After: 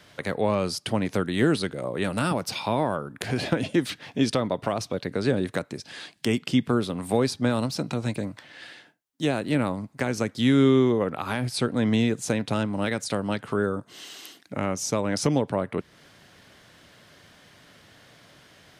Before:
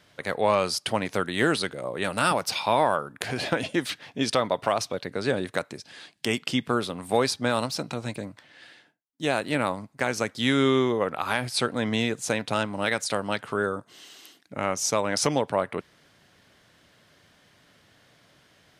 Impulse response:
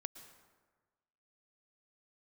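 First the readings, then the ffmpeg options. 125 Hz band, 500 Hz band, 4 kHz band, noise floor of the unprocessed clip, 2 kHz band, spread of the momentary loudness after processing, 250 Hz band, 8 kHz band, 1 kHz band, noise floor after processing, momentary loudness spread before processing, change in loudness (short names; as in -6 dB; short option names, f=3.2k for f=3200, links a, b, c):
+6.0 dB, 0.0 dB, -3.0 dB, -61 dBFS, -4.0 dB, 10 LU, +5.0 dB, -3.0 dB, -4.0 dB, -57 dBFS, 10 LU, +0.5 dB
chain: -filter_complex "[0:a]acrossover=split=380[a][b];[b]acompressor=threshold=-42dB:ratio=2[c];[a][c]amix=inputs=2:normalize=0,volume=6dB"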